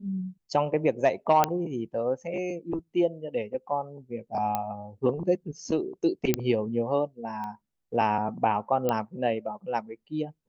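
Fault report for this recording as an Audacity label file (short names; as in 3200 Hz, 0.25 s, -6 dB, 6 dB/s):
1.440000	1.440000	pop -7 dBFS
4.550000	4.550000	pop -14 dBFS
6.340000	6.340000	pop -8 dBFS
7.440000	7.440000	pop -25 dBFS
8.890000	8.890000	pop -13 dBFS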